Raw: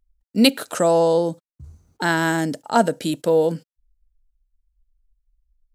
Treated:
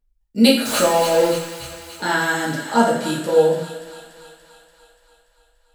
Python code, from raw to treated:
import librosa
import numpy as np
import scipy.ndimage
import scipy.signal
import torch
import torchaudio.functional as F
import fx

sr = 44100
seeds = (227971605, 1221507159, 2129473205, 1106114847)

p1 = fx.zero_step(x, sr, step_db=-20.5, at=(0.65, 1.28))
p2 = p1 + fx.echo_wet_highpass(p1, sr, ms=289, feedback_pct=64, hz=1600.0, wet_db=-8, dry=0)
p3 = fx.rev_double_slope(p2, sr, seeds[0], early_s=0.57, late_s=2.1, knee_db=-18, drr_db=-7.0)
y = p3 * 10.0 ** (-6.0 / 20.0)